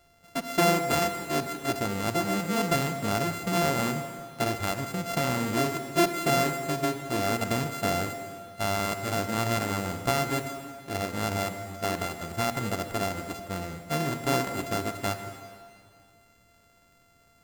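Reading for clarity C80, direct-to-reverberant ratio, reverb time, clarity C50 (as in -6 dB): 9.0 dB, 8.0 dB, 2.2 s, 8.0 dB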